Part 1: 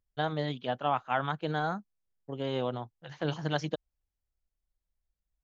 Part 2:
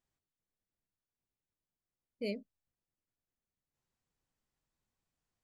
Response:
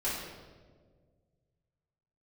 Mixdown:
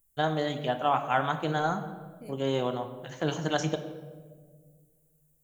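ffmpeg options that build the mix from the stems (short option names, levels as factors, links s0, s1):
-filter_complex "[0:a]volume=1.19,asplit=2[s0][s1];[s1]volume=0.251[s2];[1:a]lowshelf=f=320:g=10.5,acompressor=threshold=0.01:ratio=6,volume=0.562[s3];[2:a]atrim=start_sample=2205[s4];[s2][s4]afir=irnorm=-1:irlink=0[s5];[s0][s3][s5]amix=inputs=3:normalize=0,aexciter=amount=10.9:drive=4.2:freq=7000"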